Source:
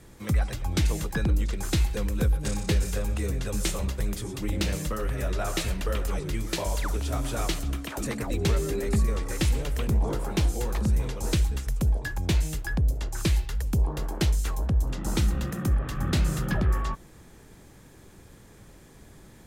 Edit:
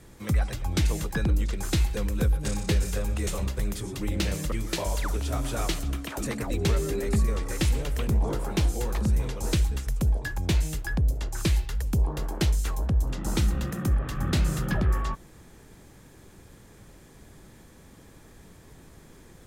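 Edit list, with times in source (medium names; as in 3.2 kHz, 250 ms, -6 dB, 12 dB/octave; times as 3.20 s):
3.27–3.68 s: delete
4.93–6.32 s: delete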